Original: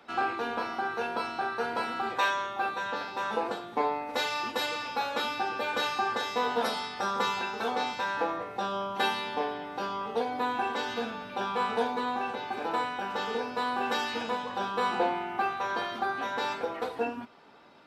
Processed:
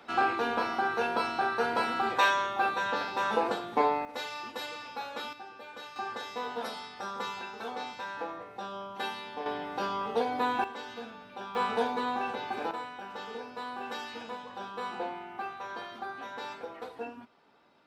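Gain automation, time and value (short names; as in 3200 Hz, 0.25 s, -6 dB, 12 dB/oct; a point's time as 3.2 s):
+2.5 dB
from 4.05 s -7.5 dB
from 5.33 s -15 dB
from 5.96 s -7.5 dB
from 9.46 s +1 dB
from 10.64 s -9 dB
from 11.55 s -0.5 dB
from 12.71 s -8.5 dB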